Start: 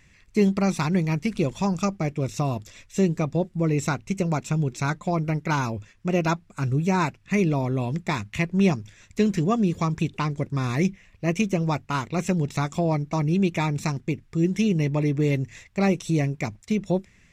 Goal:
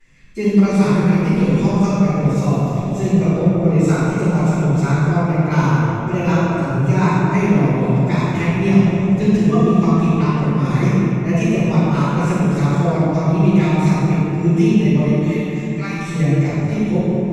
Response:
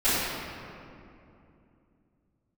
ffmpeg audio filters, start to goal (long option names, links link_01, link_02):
-filter_complex "[0:a]asettb=1/sr,asplit=3[link_01][link_02][link_03];[link_01]atrim=end=15.074[link_04];[link_02]atrim=start=15.07:end=15.97,asetpts=PTS-STARTPTS,afade=type=in:duration=0.004:curve=qsin,afade=type=out:start_time=0.896:duration=0.004:curve=qsin,highpass=frequency=980:width=0.5412,highpass=frequency=980:width=1.3066[link_05];[link_03]atrim=start=15.966[link_06];[link_04][link_05]acrossfade=duration=0.004:curve1=hsin:curve2=qsin[link_07];[link_07][link_06]acrossfade=duration=0.004:curve1=qsin:curve2=hsin[link_08];[1:a]atrim=start_sample=2205,asetrate=28224,aresample=44100[link_09];[link_08][link_09]afir=irnorm=-1:irlink=0,volume=-13dB"